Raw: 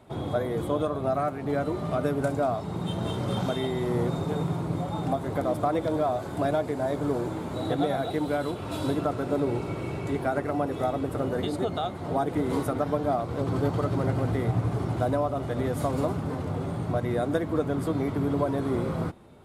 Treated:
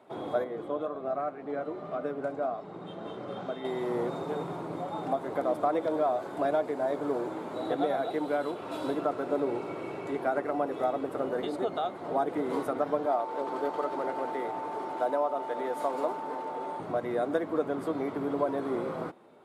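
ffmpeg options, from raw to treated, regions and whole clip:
ffmpeg -i in.wav -filter_complex "[0:a]asettb=1/sr,asplit=3[link_01][link_02][link_03];[link_01]atrim=end=0.444[link_04];[link_02]atrim=start=0.44:end=3.65,asetpts=PTS-STARTPTS,afade=type=in:duration=0.004:curve=qsin,afade=type=out:start_time=3.206:duration=0.004:curve=qsin,bandreject=frequency=920:width=11,flanger=delay=3.8:depth=3.3:regen=-72:speed=1.9:shape=sinusoidal,aemphasis=mode=reproduction:type=50fm[link_05];[link_03]atrim=start=3.646[link_06];[link_04][link_05]acrossfade=duration=0.004:curve1=hsin:curve2=qsin[link_07];[link_07][link_06]acrossfade=duration=0.004:curve1=qsin:curve2=hsin,asettb=1/sr,asplit=3[link_08][link_09][link_10];[link_08]atrim=end=13.064[link_11];[link_09]atrim=start=13.06:end=16.8,asetpts=PTS-STARTPTS,afade=type=in:duration=0.004:curve=qsin,afade=type=out:start_time=3.736:duration=0.004:curve=qsin,highpass=330,aeval=exprs='val(0)+0.0178*sin(2*PI*890*n/s)':channel_layout=same[link_12];[link_10]atrim=start=16.796[link_13];[link_11][link_12]acrossfade=duration=0.004:curve1=hsin:curve2=qsin[link_14];[link_14][link_13]acrossfade=duration=0.004:curve1=qsin:curve2=hsin,highpass=340,highshelf=frequency=3100:gain=-10.5" out.wav

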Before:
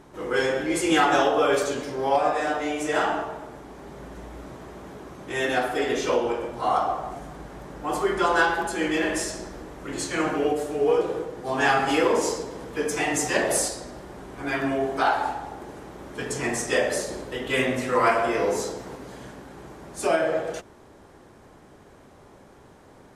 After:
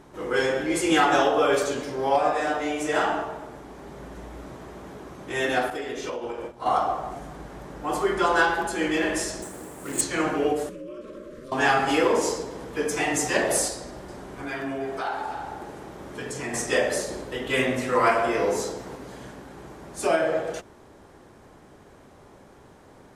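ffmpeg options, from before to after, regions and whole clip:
ffmpeg -i in.wav -filter_complex "[0:a]asettb=1/sr,asplit=3[link_01][link_02][link_03];[link_01]atrim=end=5.704[link_04];[link_02]atrim=start=5.7:end=6.66,asetpts=PTS-STARTPTS,afade=type=in:duration=0.004:curve=qsin,afade=type=out:start_time=0.956:duration=0.004:curve=qsin,acompressor=threshold=-25dB:ratio=20:attack=3.2:release=140:knee=1:detection=peak,agate=range=-33dB:threshold=-28dB:ratio=3:release=100:detection=peak[link_05];[link_03]atrim=start=6.656[link_06];[link_04][link_05]acrossfade=duration=0.004:curve1=hsin:curve2=qsin[link_07];[link_07][link_06]acrossfade=duration=0.004:curve1=qsin:curve2=hsin,asettb=1/sr,asplit=3[link_08][link_09][link_10];[link_08]atrim=end=9.424[link_11];[link_09]atrim=start=9.42:end=10.01,asetpts=PTS-STARTPTS,afade=type=in:duration=0.004:curve=qsin,afade=type=out:start_time=0.586:duration=0.004:curve=qsin,highpass=96,highshelf=frequency=6500:width_type=q:width=3:gain=9.5,acrusher=bits=3:mode=log:mix=0:aa=0.000001[link_12];[link_10]atrim=start=10.006[link_13];[link_11][link_12]acrossfade=duration=0.004:curve1=hsin:curve2=qsin[link_14];[link_14][link_13]acrossfade=duration=0.004:curve1=qsin:curve2=hsin,asettb=1/sr,asplit=3[link_15][link_16][link_17];[link_15]atrim=end=10.694[link_18];[link_16]atrim=start=10.69:end=11.52,asetpts=PTS-STARTPTS,afade=type=in:duration=0.004:curve=qsin,afade=type=out:start_time=0.826:duration=0.004:curve=qsin,aeval=exprs='val(0)*sin(2*PI*120*n/s)':channel_layout=same,acompressor=threshold=-35dB:ratio=6:attack=3.2:release=140:knee=1:detection=peak,asuperstop=centerf=800:order=20:qfactor=2.1[link_19];[link_17]atrim=start=11.516[link_20];[link_18][link_19]acrossfade=duration=0.004:curve1=hsin:curve2=qsin[link_21];[link_21][link_20]acrossfade=duration=0.004:curve1=qsin:curve2=hsin,asettb=1/sr,asplit=3[link_22][link_23][link_24];[link_22]atrim=end=13.764[link_25];[link_23]atrim=start=13.76:end=16.54,asetpts=PTS-STARTPTS,afade=type=in:duration=0.004:curve=qsin,afade=type=out:start_time=2.776:duration=0.004:curve=qsin,acompressor=threshold=-32dB:ratio=2:attack=3.2:release=140:knee=1:detection=peak,asplit=2[link_26][link_27];[link_27]adelay=47,volume=-12.5dB[link_28];[link_26][link_28]amix=inputs=2:normalize=0,atrim=end_sample=122598,aecho=1:1:322:0.251,atrim=end_sample=122598[link_29];[link_24]atrim=start=16.536[link_30];[link_25][link_29]acrossfade=duration=0.004:curve1=hsin:curve2=qsin[link_31];[link_31][link_30]acrossfade=duration=0.004:curve1=qsin:curve2=hsin" out.wav

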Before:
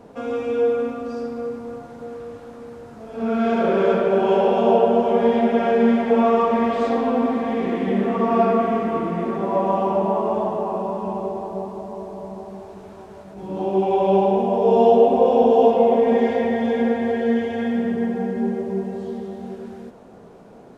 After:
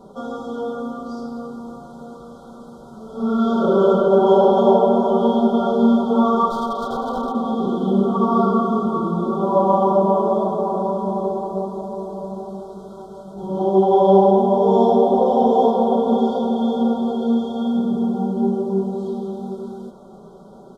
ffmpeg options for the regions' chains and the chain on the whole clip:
ffmpeg -i in.wav -filter_complex "[0:a]asettb=1/sr,asplit=3[link_01][link_02][link_03];[link_01]atrim=end=6.504[link_04];[link_02]atrim=start=6.5:end=7.35,asetpts=PTS-STARTPTS,afade=type=in:duration=0.004:curve=qsin,afade=type=out:start_time=0.846:duration=0.004:curve=qsin,bass=frequency=250:gain=-13,treble=frequency=4000:gain=-12,aeval=exprs='0.126*(abs(mod(val(0)/0.126+3,4)-2)-1)':channel_layout=same[link_05];[link_03]atrim=start=7.346[link_06];[link_04][link_05]acrossfade=duration=0.004:curve1=hsin:curve2=qsin[link_07];[link_07][link_06]acrossfade=duration=0.004:curve1=qsin:curve2=hsin,afftfilt=real='re*(1-between(b*sr/4096,1500,3100))':imag='im*(1-between(b*sr/4096,1500,3100))':win_size=4096:overlap=0.75,aecho=1:1:5.2:0.75" out.wav

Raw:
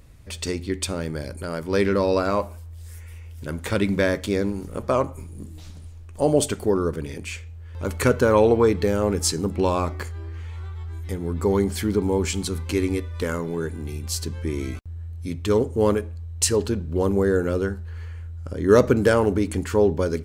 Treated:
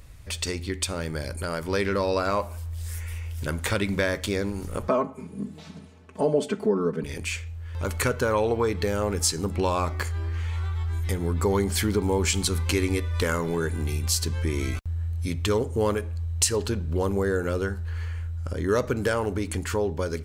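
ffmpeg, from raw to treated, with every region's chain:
ffmpeg -i in.wav -filter_complex "[0:a]asettb=1/sr,asplit=3[link_01][link_02][link_03];[link_01]atrim=end=4.884[link_04];[link_02]atrim=start=4.88:end=7.04,asetpts=PTS-STARTPTS,afade=type=in:duration=0.004:curve=qsin,afade=type=out:start_time=2.156:duration=0.004:curve=qsin,highpass=frequency=180:width=0.5412,highpass=frequency=180:width=1.3066,aemphasis=mode=reproduction:type=riaa,aecho=1:1:4.6:0.9,atrim=end_sample=95256[link_05];[link_03]atrim=start=7.036[link_06];[link_04][link_05]acrossfade=duration=0.004:curve1=hsin:curve2=qsin[link_07];[link_07][link_06]acrossfade=duration=0.004:curve1=qsin:curve2=hsin,dynaudnorm=framelen=250:gausssize=17:maxgain=11.5dB,equalizer=frequency=260:width=0.53:gain=-7,acompressor=threshold=-31dB:ratio=2,volume=4dB" out.wav

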